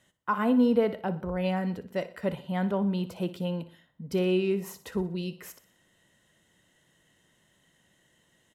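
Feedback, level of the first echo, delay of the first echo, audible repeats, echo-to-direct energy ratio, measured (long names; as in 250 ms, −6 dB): 45%, −15.0 dB, 60 ms, 3, −14.0 dB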